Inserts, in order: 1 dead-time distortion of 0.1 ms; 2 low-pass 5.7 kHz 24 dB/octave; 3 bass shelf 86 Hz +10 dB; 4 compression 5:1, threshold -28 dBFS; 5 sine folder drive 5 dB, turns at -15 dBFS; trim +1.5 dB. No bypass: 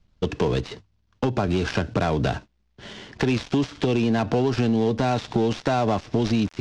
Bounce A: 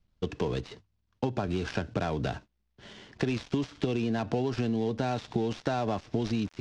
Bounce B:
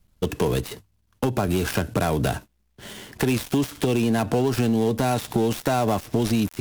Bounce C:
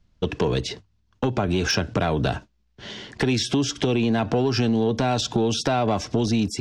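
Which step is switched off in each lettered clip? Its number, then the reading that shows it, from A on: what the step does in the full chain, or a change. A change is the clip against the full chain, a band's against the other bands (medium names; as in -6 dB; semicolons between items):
5, distortion -16 dB; 2, 8 kHz band +8.5 dB; 1, distortion -11 dB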